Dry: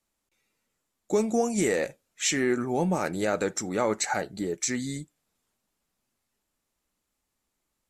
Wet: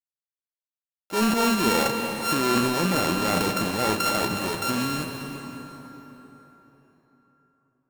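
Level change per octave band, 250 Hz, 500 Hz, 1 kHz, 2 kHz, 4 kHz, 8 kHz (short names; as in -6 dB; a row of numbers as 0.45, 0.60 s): +4.0, 0.0, +8.0, +5.0, +8.5, 0.0 dB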